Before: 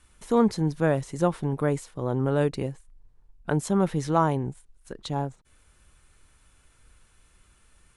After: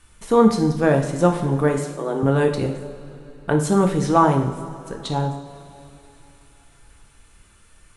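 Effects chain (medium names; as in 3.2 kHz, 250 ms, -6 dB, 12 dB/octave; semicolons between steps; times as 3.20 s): 1.78–2.23 s: steep high-pass 270 Hz; on a send: reverberation, pre-delay 3 ms, DRR 2.5 dB; on the sum: trim +5 dB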